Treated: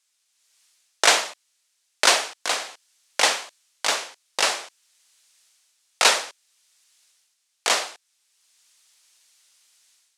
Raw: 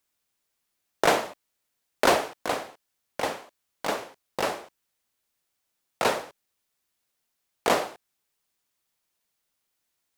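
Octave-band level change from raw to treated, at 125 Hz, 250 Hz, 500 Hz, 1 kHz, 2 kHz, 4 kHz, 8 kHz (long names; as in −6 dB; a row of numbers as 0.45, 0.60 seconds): below −10 dB, −8.5 dB, −3.0 dB, +1.5 dB, +7.5 dB, +12.0 dB, +13.5 dB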